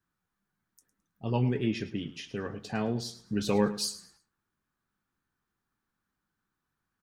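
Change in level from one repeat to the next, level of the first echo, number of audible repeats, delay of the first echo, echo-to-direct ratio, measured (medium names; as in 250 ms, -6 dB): -11.0 dB, -15.5 dB, 2, 107 ms, -15.0 dB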